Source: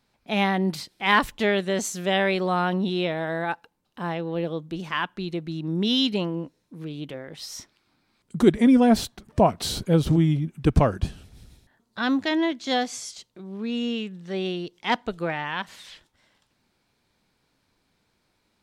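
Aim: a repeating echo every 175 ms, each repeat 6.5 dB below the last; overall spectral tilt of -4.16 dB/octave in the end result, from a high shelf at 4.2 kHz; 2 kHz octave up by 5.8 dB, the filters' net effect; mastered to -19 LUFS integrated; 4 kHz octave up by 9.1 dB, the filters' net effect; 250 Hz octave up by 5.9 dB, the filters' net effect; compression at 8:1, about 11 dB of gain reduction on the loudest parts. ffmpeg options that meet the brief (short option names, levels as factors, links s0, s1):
-af "equalizer=f=250:t=o:g=7,equalizer=f=2000:t=o:g=4,equalizer=f=4000:t=o:g=6.5,highshelf=f=4200:g=7,acompressor=threshold=0.126:ratio=8,aecho=1:1:175|350|525|700|875|1050:0.473|0.222|0.105|0.0491|0.0231|0.0109,volume=1.68"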